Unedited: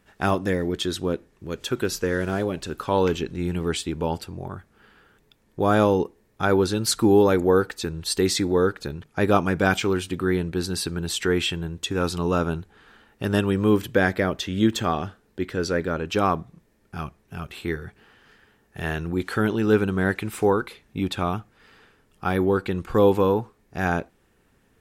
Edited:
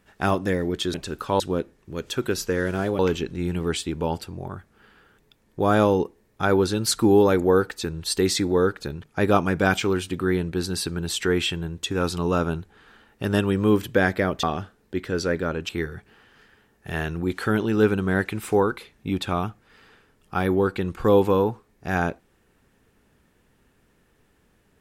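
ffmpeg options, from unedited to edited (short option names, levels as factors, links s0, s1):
-filter_complex "[0:a]asplit=6[s0][s1][s2][s3][s4][s5];[s0]atrim=end=0.942[s6];[s1]atrim=start=2.528:end=2.992[s7];[s2]atrim=start=0.938:end=2.532[s8];[s3]atrim=start=2.988:end=14.432[s9];[s4]atrim=start=14.878:end=16.142[s10];[s5]atrim=start=17.588[s11];[s6][s7]acrossfade=d=0.004:c1=hsin:c2=hsin[s12];[s12][s8]acrossfade=d=0.004:c1=hsin:c2=hsin[s13];[s13][s9]acrossfade=d=0.004:c1=hsin:c2=hsin[s14];[s14][s10]acrossfade=d=0.004:c1=hsin:c2=hsin[s15];[s15][s11]acrossfade=d=0.004:c1=hsin:c2=hsin"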